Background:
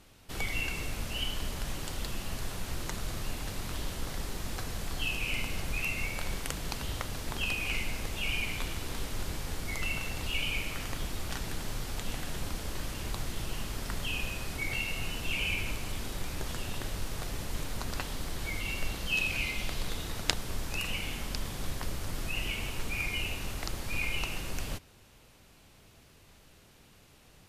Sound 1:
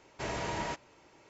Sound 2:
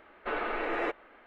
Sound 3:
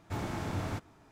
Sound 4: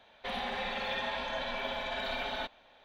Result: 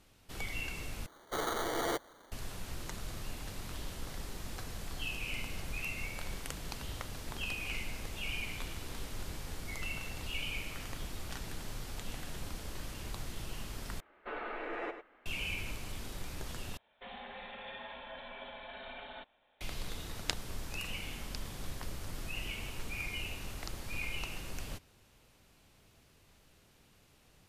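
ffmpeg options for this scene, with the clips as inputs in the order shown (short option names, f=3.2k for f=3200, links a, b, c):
-filter_complex "[2:a]asplit=2[a][b];[0:a]volume=-6dB[c];[a]acrusher=samples=17:mix=1:aa=0.000001[d];[b]asplit=2[e][f];[f]adelay=99.13,volume=-9dB,highshelf=f=4k:g=-2.23[g];[e][g]amix=inputs=2:normalize=0[h];[4:a]aresample=8000,aresample=44100[i];[c]asplit=4[j][k][l][m];[j]atrim=end=1.064[n];[d]atrim=end=1.26,asetpts=PTS-STARTPTS,volume=-2.5dB[o];[k]atrim=start=2.316:end=14.004[p];[h]atrim=end=1.26,asetpts=PTS-STARTPTS,volume=-8.5dB[q];[l]atrim=start=15.256:end=16.774[r];[i]atrim=end=2.84,asetpts=PTS-STARTPTS,volume=-11dB[s];[m]atrim=start=19.606[t];[n][o]acrossfade=d=0.004:c1=hsin:c2=hsin[u];[u][p]acrossfade=d=0.004:c1=hsin:c2=hsin[v];[v][q]acrossfade=d=0.004:c1=hsin:c2=hsin[w];[w][r]acrossfade=d=0.004:c1=hsin:c2=hsin[x];[x][s]acrossfade=d=0.004:c1=hsin:c2=hsin[y];[y][t]acrossfade=d=0.004:c1=hsin:c2=hsin"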